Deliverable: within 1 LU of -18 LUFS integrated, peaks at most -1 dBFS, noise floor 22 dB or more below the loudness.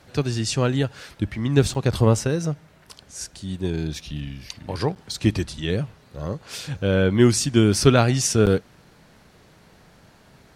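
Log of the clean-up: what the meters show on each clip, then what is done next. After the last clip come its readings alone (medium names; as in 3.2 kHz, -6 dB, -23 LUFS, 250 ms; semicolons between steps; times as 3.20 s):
dropouts 3; longest dropout 8.6 ms; loudness -22.0 LUFS; peak level -1.5 dBFS; loudness target -18.0 LUFS
-> interpolate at 1.74/4.95/8.46 s, 8.6 ms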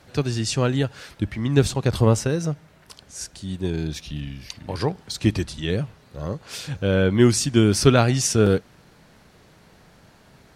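dropouts 0; loudness -22.0 LUFS; peak level -1.5 dBFS; loudness target -18.0 LUFS
-> trim +4 dB; peak limiter -1 dBFS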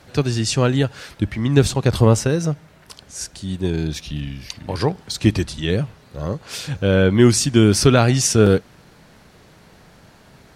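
loudness -18.5 LUFS; peak level -1.0 dBFS; noise floor -50 dBFS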